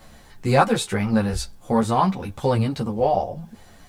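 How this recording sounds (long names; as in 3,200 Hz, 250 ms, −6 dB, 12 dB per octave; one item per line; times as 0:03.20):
tremolo saw down 0.89 Hz, depth 35%
a quantiser's noise floor 12 bits, dither triangular
a shimmering, thickened sound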